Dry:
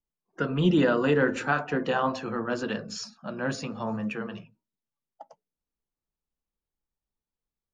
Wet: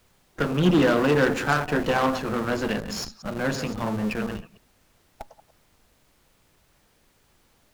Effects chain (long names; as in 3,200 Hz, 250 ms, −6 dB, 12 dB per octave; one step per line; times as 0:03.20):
delay that plays each chunk backwards 104 ms, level −11.5 dB
in parallel at −9.5 dB: comparator with hysteresis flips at −35 dBFS
on the sum: harmonic generator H 8 −20 dB, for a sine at −10 dBFS
background noise pink −64 dBFS
level +1.5 dB